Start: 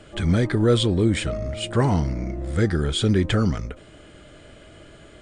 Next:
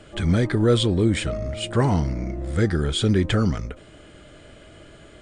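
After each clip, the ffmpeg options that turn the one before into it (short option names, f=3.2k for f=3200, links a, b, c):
-af anull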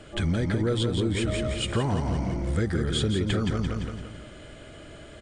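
-filter_complex "[0:a]asplit=2[a][b];[b]aecho=0:1:171|342|513|684|855:0.562|0.247|0.109|0.0479|0.0211[c];[a][c]amix=inputs=2:normalize=0,acompressor=threshold=-22dB:ratio=6"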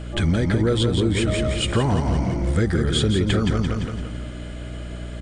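-af "aeval=exprs='val(0)+0.0141*(sin(2*PI*60*n/s)+sin(2*PI*2*60*n/s)/2+sin(2*PI*3*60*n/s)/3+sin(2*PI*4*60*n/s)/4+sin(2*PI*5*60*n/s)/5)':c=same,volume=5.5dB"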